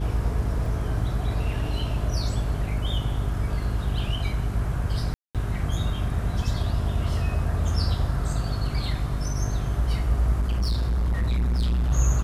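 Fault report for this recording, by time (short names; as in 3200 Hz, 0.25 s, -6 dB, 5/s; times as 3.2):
hum 50 Hz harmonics 8 -28 dBFS
0.66 gap 2.1 ms
5.14–5.35 gap 0.207 s
10.4–11.92 clipped -20.5 dBFS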